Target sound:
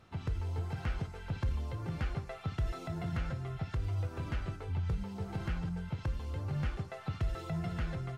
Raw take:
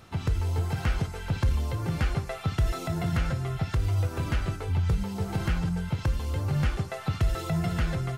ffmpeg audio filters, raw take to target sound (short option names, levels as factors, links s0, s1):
-af "highshelf=f=6900:g=-12,volume=0.376"